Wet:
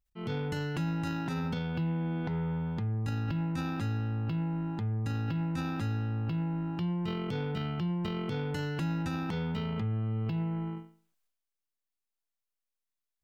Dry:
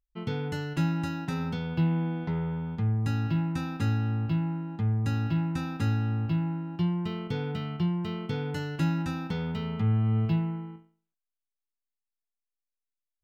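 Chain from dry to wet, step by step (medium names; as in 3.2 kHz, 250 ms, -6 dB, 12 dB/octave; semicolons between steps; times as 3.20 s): transient shaper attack -6 dB, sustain +10 dB; compression, threshold -29 dBFS, peak gain reduction 7.5 dB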